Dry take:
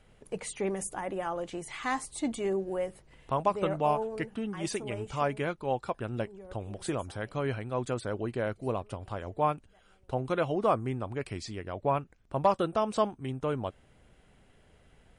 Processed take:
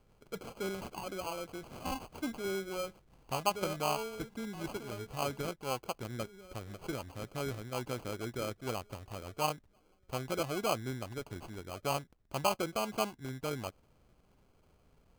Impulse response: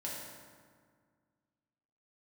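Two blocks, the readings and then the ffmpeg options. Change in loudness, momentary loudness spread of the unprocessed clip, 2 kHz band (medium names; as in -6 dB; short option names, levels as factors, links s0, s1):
-5.5 dB, 10 LU, -3.0 dB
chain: -af "acrusher=samples=24:mix=1:aa=0.000001,volume=0.501"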